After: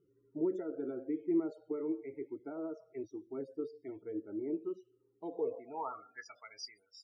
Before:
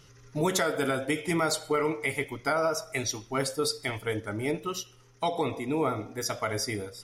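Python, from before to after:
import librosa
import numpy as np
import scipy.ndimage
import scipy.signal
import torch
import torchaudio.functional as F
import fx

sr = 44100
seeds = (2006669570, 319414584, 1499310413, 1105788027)

y = fx.spec_topn(x, sr, count=32)
y = fx.filter_sweep_bandpass(y, sr, from_hz=340.0, to_hz=6000.0, start_s=5.31, end_s=6.86, q=6.8)
y = F.gain(torch.from_numpy(y), 1.0).numpy()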